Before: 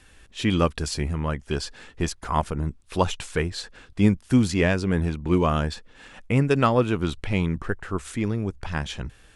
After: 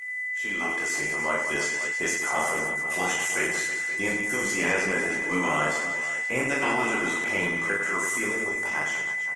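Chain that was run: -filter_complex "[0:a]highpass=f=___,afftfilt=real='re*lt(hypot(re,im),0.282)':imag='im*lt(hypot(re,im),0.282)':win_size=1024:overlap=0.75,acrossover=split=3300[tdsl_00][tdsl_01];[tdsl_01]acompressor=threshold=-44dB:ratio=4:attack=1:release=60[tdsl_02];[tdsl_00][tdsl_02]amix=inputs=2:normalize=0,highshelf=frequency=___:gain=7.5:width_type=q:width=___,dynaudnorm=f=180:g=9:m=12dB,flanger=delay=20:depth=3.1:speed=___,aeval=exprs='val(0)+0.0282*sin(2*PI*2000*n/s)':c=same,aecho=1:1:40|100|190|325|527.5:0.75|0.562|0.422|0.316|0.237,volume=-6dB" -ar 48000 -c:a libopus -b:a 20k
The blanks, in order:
490, 5300, 3, 1.8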